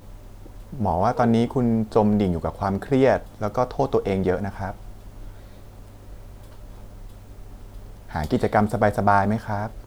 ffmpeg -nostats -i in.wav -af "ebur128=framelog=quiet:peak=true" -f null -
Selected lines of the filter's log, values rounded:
Integrated loudness:
  I:         -22.4 LUFS
  Threshold: -34.5 LUFS
Loudness range:
  LRA:        18.8 LU
  Threshold: -45.2 LUFS
  LRA low:   -40.6 LUFS
  LRA high:  -21.9 LUFS
True peak:
  Peak:       -4.5 dBFS